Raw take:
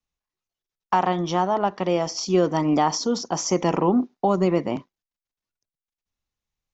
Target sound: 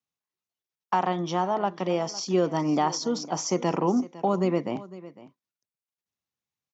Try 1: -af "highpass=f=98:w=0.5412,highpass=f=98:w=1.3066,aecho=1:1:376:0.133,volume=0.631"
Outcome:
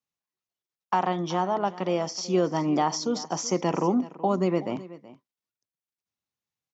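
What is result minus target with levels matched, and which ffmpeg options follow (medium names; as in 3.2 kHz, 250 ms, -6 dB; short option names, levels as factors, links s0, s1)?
echo 129 ms early
-af "highpass=f=98:w=0.5412,highpass=f=98:w=1.3066,aecho=1:1:505:0.133,volume=0.631"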